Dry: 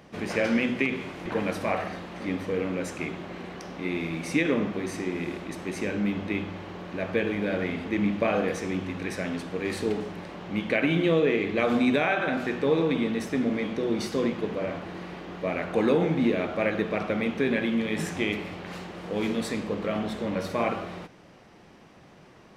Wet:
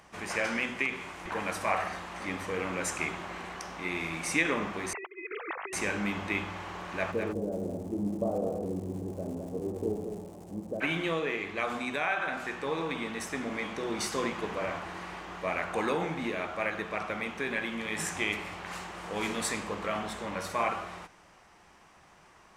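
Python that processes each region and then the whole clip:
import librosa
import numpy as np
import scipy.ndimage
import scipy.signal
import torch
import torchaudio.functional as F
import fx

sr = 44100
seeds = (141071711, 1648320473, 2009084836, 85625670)

y = fx.chain(x, sr, fx.sine_speech(),
    fx.over_compress(threshold_db=-36.0, ratio=-0.5), at=(4.93, 5.73))
y = fx.cheby2_lowpass(y, sr, hz=2600.0, order=4, stop_db=70, at=(7.11, 10.8), fade=0.02)
y = fx.dmg_crackle(y, sr, seeds[0], per_s=210.0, level_db=-49.0, at=(7.11, 10.8), fade=0.02)
y = fx.echo_single(y, sr, ms=207, db=-6.0, at=(7.11, 10.8), fade=0.02)
y = fx.graphic_eq(y, sr, hz=(125, 250, 500, 1000, 4000, 8000), db=(-9, -9, -7, 4, -4, 7))
y = fx.rider(y, sr, range_db=5, speed_s=2.0)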